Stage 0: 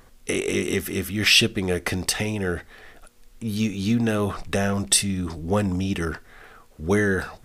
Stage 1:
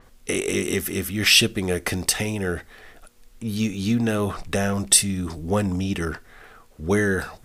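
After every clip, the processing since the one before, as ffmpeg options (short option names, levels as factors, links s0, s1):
-af "adynamicequalizer=threshold=0.0141:dfrequency=6300:dqfactor=0.7:tfrequency=6300:tqfactor=0.7:attack=5:release=100:ratio=0.375:range=3:mode=boostabove:tftype=highshelf"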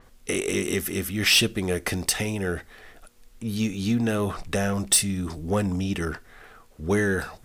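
-af "asoftclip=type=tanh:threshold=0.355,volume=0.841"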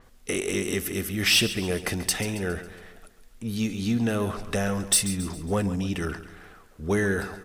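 -af "aecho=1:1:137|274|411|548|685:0.211|0.101|0.0487|0.0234|0.0112,volume=0.841"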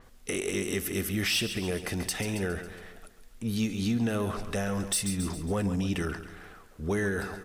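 -af "alimiter=limit=0.0944:level=0:latency=1:release=161"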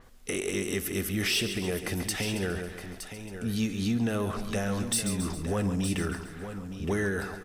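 -af "aecho=1:1:916:0.316"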